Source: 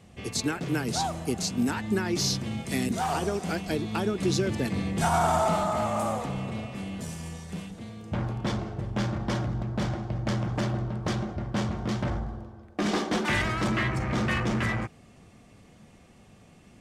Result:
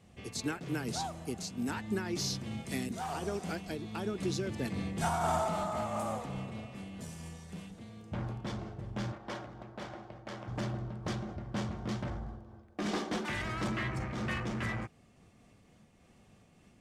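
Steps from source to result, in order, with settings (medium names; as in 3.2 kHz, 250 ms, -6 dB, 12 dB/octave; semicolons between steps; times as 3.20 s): 9.12–10.48 s: tone controls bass -14 dB, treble -5 dB; random flutter of the level, depth 50%; trim -5.5 dB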